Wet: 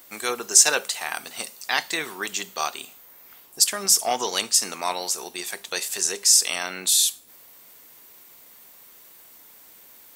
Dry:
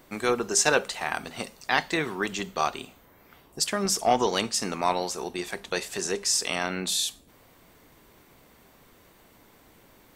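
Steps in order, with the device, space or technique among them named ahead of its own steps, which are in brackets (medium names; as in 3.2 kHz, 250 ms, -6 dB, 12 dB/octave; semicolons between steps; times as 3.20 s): turntable without a phono preamp (RIAA curve recording; white noise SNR 34 dB); trim -1.5 dB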